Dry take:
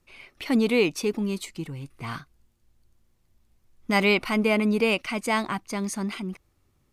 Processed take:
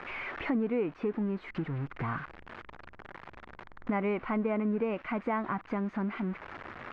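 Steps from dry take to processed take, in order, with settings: switching spikes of -18 dBFS; LPF 1700 Hz 24 dB/oct; compressor 3:1, threshold -39 dBFS, peak gain reduction 16 dB; gain +6.5 dB

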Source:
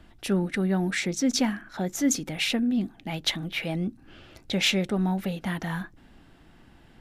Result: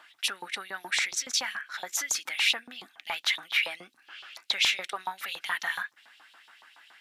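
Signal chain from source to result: 4.87–5.29 HPF 270 Hz -> 92 Hz 24 dB/oct; limiter -22 dBFS, peak gain reduction 8 dB; LFO high-pass saw up 7.1 Hz 900–4000 Hz; gain +4 dB

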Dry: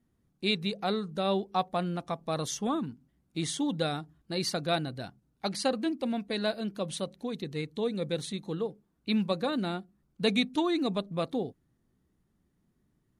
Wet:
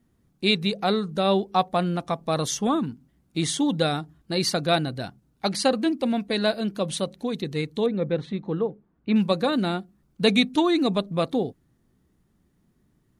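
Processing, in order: 7.86–9.16 LPF 1900 Hz 12 dB/oct; gain +7 dB

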